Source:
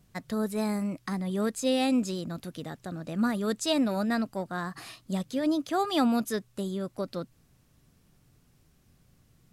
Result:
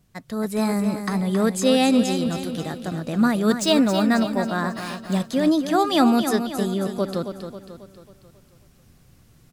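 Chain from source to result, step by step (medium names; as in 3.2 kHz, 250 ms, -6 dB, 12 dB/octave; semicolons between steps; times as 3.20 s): 3.50–5.20 s: median filter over 3 samples; on a send: feedback delay 271 ms, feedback 49%, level -8.5 dB; on the sum: level rider gain up to 8 dB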